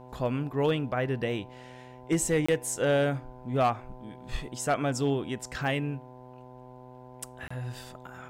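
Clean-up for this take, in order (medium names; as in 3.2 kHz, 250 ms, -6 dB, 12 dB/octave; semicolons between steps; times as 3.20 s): clip repair -18 dBFS; de-hum 126.3 Hz, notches 8; interpolate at 2.46/7.48 s, 25 ms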